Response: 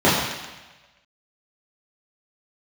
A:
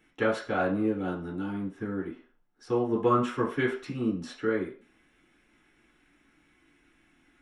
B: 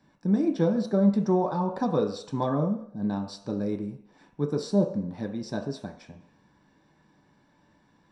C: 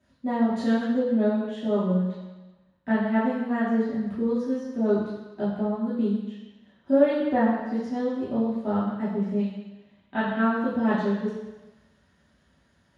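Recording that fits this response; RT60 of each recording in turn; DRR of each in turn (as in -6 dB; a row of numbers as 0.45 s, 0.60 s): C; 0.40 s, no single decay rate, 1.2 s; -5.0 dB, 2.5 dB, -10.0 dB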